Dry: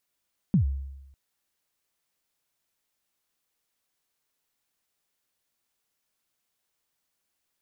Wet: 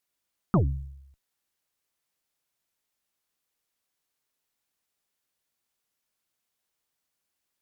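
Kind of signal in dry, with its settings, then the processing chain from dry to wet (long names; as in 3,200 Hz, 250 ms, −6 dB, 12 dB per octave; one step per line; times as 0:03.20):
synth kick length 0.60 s, from 220 Hz, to 68 Hz, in 108 ms, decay 0.98 s, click off, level −15.5 dB
harmonic generator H 4 −12 dB, 6 −8 dB, 7 −29 dB, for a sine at −15.5 dBFS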